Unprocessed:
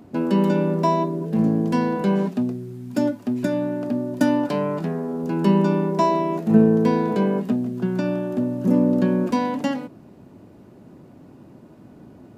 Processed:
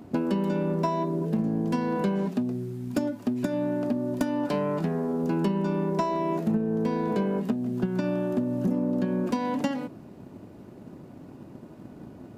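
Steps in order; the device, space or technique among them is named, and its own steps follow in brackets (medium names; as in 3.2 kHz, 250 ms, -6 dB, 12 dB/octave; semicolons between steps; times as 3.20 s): drum-bus smash (transient shaper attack +6 dB, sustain +1 dB; compression 6:1, threshold -22 dBFS, peak gain reduction 15.5 dB; saturation -15 dBFS, distortion -22 dB)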